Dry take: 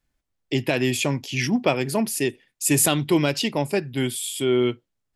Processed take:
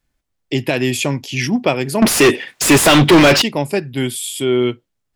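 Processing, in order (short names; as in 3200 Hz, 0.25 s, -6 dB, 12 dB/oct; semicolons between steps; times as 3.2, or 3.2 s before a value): 2.02–3.42 overdrive pedal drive 35 dB, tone 2600 Hz, clips at -5.5 dBFS; gain +4.5 dB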